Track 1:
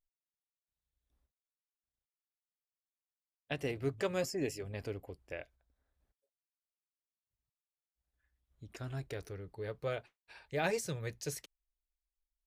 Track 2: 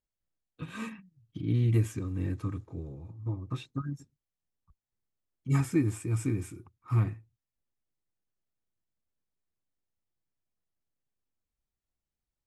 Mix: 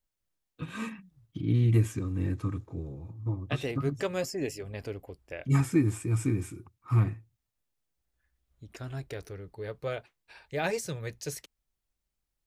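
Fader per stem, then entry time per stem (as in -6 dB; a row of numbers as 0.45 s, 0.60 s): +3.0 dB, +2.0 dB; 0.00 s, 0.00 s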